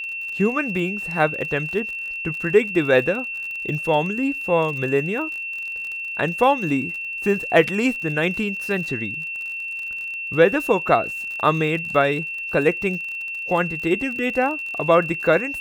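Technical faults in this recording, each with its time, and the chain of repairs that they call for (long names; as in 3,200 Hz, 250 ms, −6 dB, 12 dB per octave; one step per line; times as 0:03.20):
surface crackle 43 per second −30 dBFS
whistle 2,700 Hz −27 dBFS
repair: click removal
notch filter 2,700 Hz, Q 30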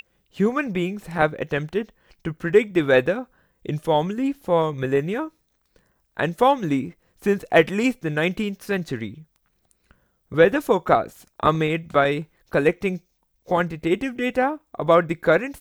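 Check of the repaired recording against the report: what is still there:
none of them is left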